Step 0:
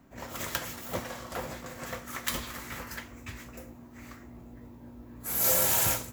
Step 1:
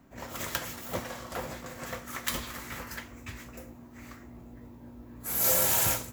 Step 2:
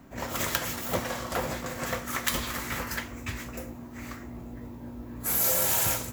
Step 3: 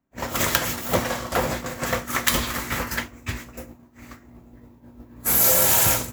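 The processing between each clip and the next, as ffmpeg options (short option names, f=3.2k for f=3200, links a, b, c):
-af anull
-af "acompressor=threshold=-31dB:ratio=3,volume=7dB"
-af "agate=range=-33dB:threshold=-30dB:ratio=3:detection=peak,volume=7.5dB"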